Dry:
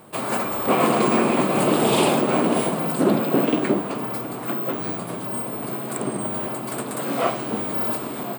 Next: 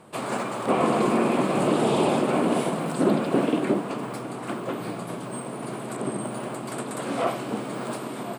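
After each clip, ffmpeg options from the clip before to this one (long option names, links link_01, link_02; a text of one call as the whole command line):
ffmpeg -i in.wav -filter_complex "[0:a]lowpass=9500,acrossover=split=1200[link_01][link_02];[link_02]alimiter=level_in=0.5dB:limit=-24dB:level=0:latency=1:release=32,volume=-0.5dB[link_03];[link_01][link_03]amix=inputs=2:normalize=0,volume=-2.5dB" out.wav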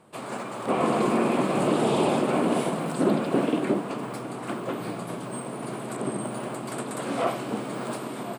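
ffmpeg -i in.wav -af "dynaudnorm=framelen=440:gausssize=3:maxgain=5.5dB,volume=-6dB" out.wav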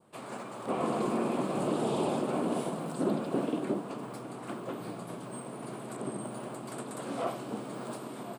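ffmpeg -i in.wav -af "adynamicequalizer=threshold=0.00501:dfrequency=2100:dqfactor=1.4:tfrequency=2100:tqfactor=1.4:attack=5:release=100:ratio=0.375:range=3:mode=cutabove:tftype=bell,volume=-7dB" out.wav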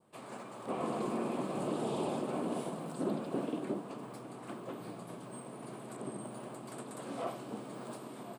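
ffmpeg -i in.wav -af "bandreject=frequency=1400:width=27,volume=-5dB" out.wav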